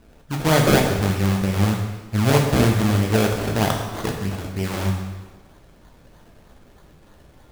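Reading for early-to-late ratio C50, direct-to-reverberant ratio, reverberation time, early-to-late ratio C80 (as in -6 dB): 4.5 dB, 1.0 dB, 1.2 s, 6.0 dB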